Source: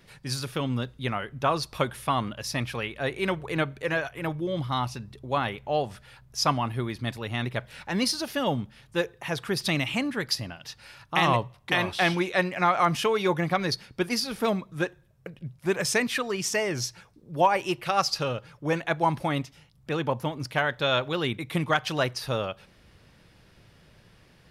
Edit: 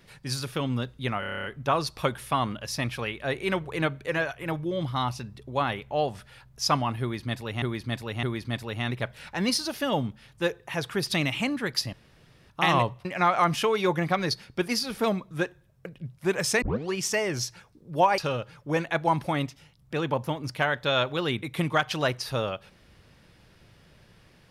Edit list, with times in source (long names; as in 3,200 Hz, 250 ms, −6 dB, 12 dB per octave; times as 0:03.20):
0:01.20: stutter 0.03 s, 9 plays
0:06.77–0:07.38: repeat, 3 plays
0:10.47–0:11.04: fill with room tone
0:11.59–0:12.46: remove
0:16.03: tape start 0.31 s
0:17.59–0:18.14: remove